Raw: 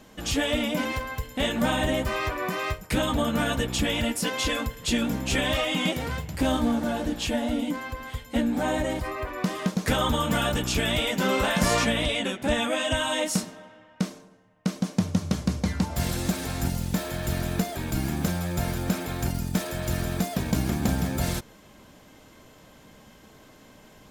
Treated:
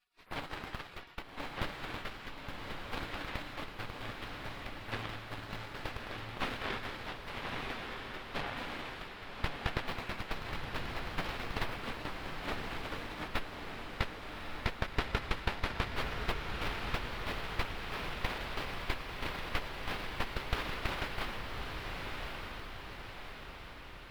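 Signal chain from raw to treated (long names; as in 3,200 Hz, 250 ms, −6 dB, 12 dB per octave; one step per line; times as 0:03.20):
gate on every frequency bin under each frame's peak −30 dB weak
0:03.71–0:05.68: amplitude modulation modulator 110 Hz, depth 25%
harmonic generator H 3 −17 dB, 8 −10 dB, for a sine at −20.5 dBFS
high-frequency loss of the air 410 metres
on a send: feedback delay with all-pass diffusion 1,188 ms, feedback 55%, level −3.5 dB
on the sum: level +11.5 dB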